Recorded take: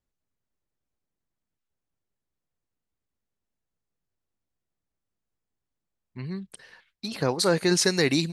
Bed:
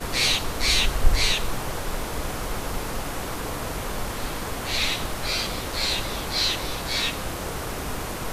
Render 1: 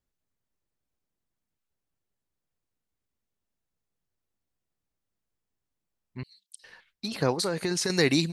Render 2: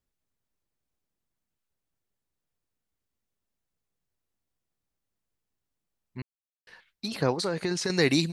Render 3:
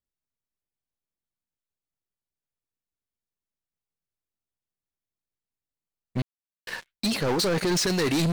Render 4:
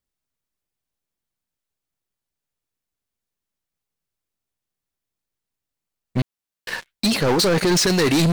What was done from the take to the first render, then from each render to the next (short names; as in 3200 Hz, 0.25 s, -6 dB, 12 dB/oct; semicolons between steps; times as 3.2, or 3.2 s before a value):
6.23–6.64 inverse Chebyshev high-pass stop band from 1200 Hz, stop band 60 dB; 7.34–7.9 compressor, threshold -24 dBFS
6.22–6.67 mute; 7.21–8.02 air absorption 55 m
reverse; compressor 5:1, threshold -32 dBFS, peak gain reduction 13 dB; reverse; sample leveller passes 5
gain +6.5 dB